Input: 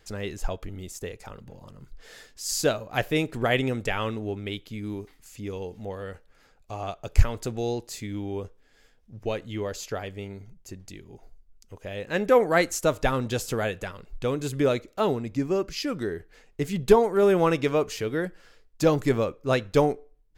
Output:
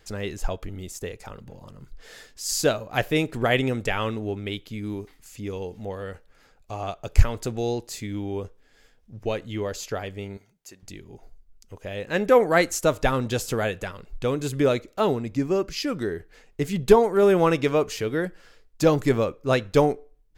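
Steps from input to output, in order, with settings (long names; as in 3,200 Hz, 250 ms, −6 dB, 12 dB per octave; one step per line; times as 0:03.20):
0:10.37–0:10.83: high-pass filter 940 Hz 6 dB per octave
level +2 dB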